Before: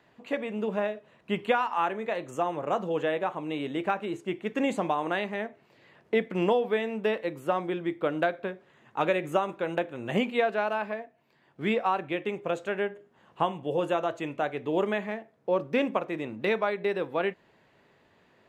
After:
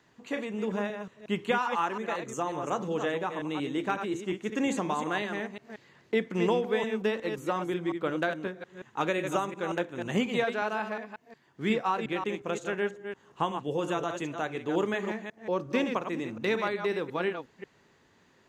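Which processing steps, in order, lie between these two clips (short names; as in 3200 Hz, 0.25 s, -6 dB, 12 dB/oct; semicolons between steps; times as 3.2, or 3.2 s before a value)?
reverse delay 0.18 s, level -7 dB; fifteen-band EQ 630 Hz -7 dB, 2500 Hz -3 dB, 6300 Hz +10 dB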